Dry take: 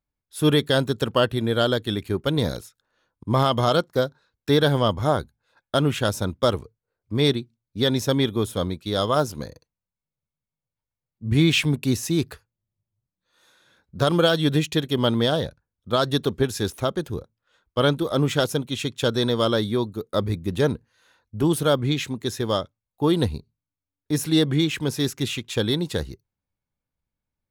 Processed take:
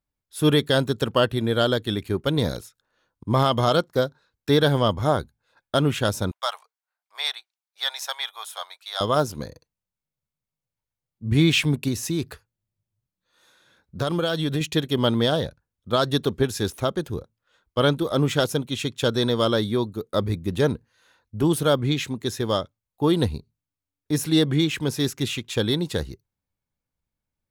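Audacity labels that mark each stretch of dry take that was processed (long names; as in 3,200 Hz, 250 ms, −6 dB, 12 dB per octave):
6.310000	9.010000	elliptic high-pass filter 720 Hz, stop band 60 dB
11.880000	14.610000	downward compressor 3 to 1, threshold −21 dBFS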